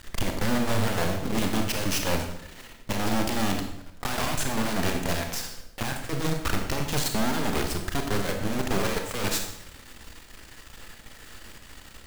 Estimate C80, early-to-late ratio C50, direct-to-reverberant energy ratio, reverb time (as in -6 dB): 8.5 dB, 6.0 dB, 3.5 dB, 0.80 s